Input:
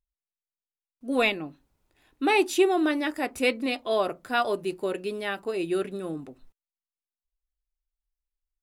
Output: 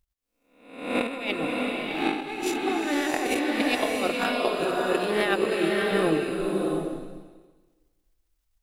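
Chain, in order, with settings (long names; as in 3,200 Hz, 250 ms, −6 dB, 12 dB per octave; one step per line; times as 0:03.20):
peak hold with a rise ahead of every peak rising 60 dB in 0.67 s
transient designer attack +9 dB, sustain −11 dB
compressor whose output falls as the input rises −31 dBFS, ratio −1
slow-attack reverb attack 670 ms, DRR −0.5 dB
level +1.5 dB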